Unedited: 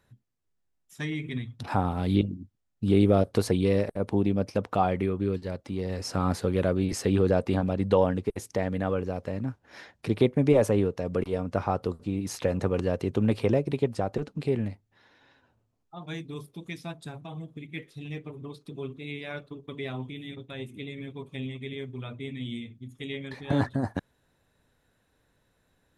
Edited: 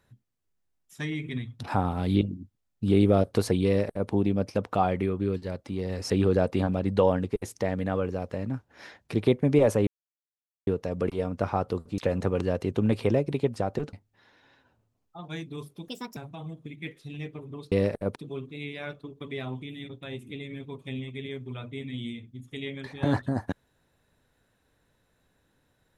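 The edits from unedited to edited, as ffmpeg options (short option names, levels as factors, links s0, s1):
-filter_complex "[0:a]asplit=9[s0][s1][s2][s3][s4][s5][s6][s7][s8];[s0]atrim=end=6.102[s9];[s1]atrim=start=7.038:end=10.81,asetpts=PTS-STARTPTS,afade=t=out:st=3.768:d=0.004:c=hsin,apad=pad_dur=0.8[s10];[s2]atrim=start=10.81:end=12.122,asetpts=PTS-STARTPTS,afade=t=in:d=0.004:c=hsin[s11];[s3]atrim=start=12.368:end=14.322[s12];[s4]atrim=start=14.708:end=16.664[s13];[s5]atrim=start=16.66:end=17.08,asetpts=PTS-STARTPTS,asetrate=64386,aresample=44100,atrim=end_sample=12686,asetpts=PTS-STARTPTS[s14];[s6]atrim=start=17.076:end=18.632[s15];[s7]atrim=start=3.658:end=4.102[s16];[s8]atrim=start=18.628[s17];[s10][s11]concat=n=2:v=0:a=1[s18];[s9][s18]acrossfade=d=0.004:c1=hsin:c2=hsin[s19];[s19][s12]acrossfade=d=0.004:c1=hsin:c2=hsin[s20];[s20][s13]acrossfade=d=0.004:c1=hsin:c2=hsin[s21];[s21][s14]acrossfade=d=0.004:c1=hsin:c2=hsin[s22];[s22][s15]acrossfade=d=0.004:c1=hsin:c2=hsin[s23];[s23][s16]acrossfade=d=0.004:c1=hsin:c2=hsin[s24];[s24][s17]acrossfade=d=0.004:c1=hsin:c2=hsin"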